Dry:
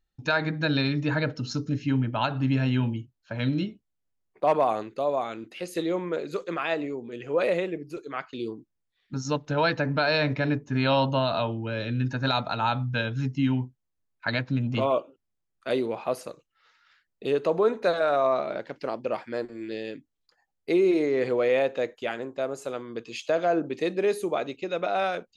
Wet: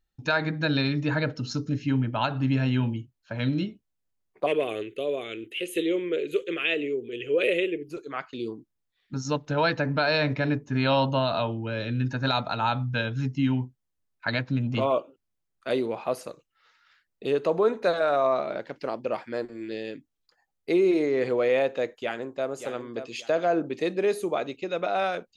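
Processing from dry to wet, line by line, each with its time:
4.46–7.89 s: FFT filter 110 Hz 0 dB, 190 Hz -9 dB, 420 Hz +7 dB, 860 Hz -19 dB, 2.2 kHz +5 dB, 3.1 kHz +13 dB, 4.7 kHz -13 dB, 9.4 kHz +6 dB
21.98–22.48 s: echo throw 580 ms, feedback 30%, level -10 dB

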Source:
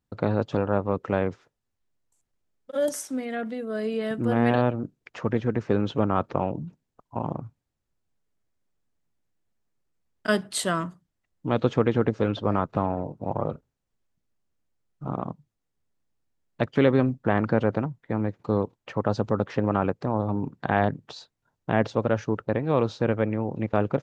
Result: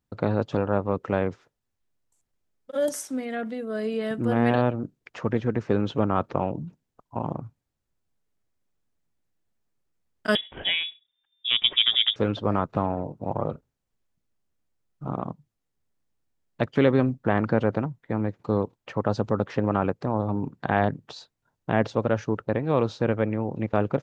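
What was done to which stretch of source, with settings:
10.35–12.16 s: frequency inversion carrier 3.6 kHz

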